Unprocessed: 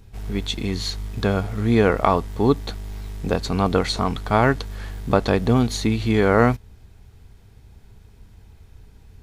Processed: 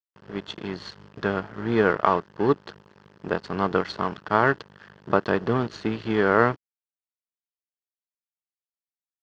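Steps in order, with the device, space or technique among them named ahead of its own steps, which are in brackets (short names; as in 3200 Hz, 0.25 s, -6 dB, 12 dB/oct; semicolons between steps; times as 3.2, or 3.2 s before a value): blown loudspeaker (crossover distortion -29 dBFS; speaker cabinet 190–4300 Hz, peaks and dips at 250 Hz -8 dB, 520 Hz -4 dB, 740 Hz -6 dB, 1600 Hz +3 dB, 2300 Hz -9 dB, 3800 Hz -10 dB); gain +1.5 dB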